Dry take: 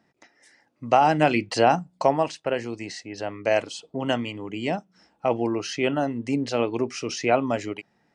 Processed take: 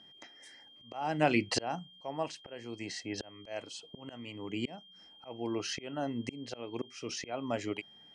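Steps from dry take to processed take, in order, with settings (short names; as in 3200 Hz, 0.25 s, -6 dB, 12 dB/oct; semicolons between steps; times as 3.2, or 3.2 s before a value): auto swell 0.766 s; whine 3200 Hz -55 dBFS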